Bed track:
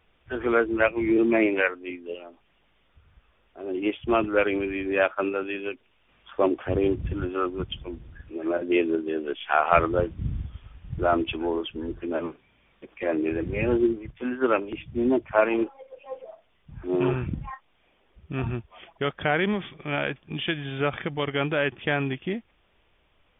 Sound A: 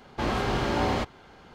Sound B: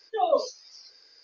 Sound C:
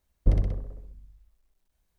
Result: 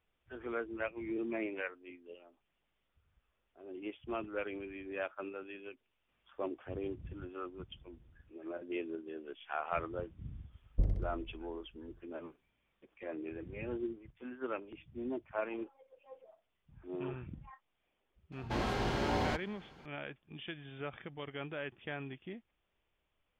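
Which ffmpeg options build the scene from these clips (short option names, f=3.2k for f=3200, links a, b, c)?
-filter_complex "[0:a]volume=-16.5dB[a];[3:a]tiltshelf=f=660:g=3.5[b];[1:a]bandreject=f=1.2k:w=11[c];[b]atrim=end=1.98,asetpts=PTS-STARTPTS,volume=-12.5dB,afade=t=in:d=0.004:c=hsin,afade=t=out:st=1.976:d=0.004:c=hsin,adelay=10520[d];[c]atrim=end=1.54,asetpts=PTS-STARTPTS,volume=-7dB,afade=t=in:d=0.004:c=hsin,afade=t=out:st=1.536:d=0.004:c=hsin,adelay=18320[e];[a][d][e]amix=inputs=3:normalize=0"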